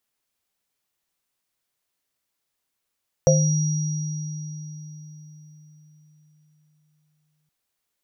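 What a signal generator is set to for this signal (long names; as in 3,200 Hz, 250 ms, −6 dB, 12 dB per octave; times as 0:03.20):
inharmonic partials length 4.22 s, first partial 152 Hz, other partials 526/663/5,750 Hz, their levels 5/−7.5/−7.5 dB, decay 4.62 s, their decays 0.35/0.26/3.59 s, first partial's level −15.5 dB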